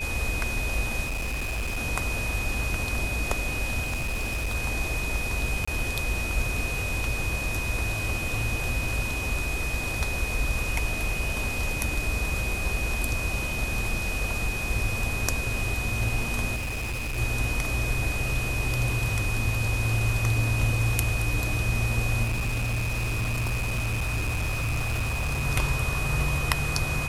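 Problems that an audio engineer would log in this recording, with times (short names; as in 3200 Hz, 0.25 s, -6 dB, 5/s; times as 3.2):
tone 2500 Hz -31 dBFS
1.04–1.78 clipped -26 dBFS
3.84–4.55 clipped -24.5 dBFS
5.65–5.67 gap 25 ms
16.55–17.19 clipped -27.5 dBFS
22.23–25.46 clipped -23.5 dBFS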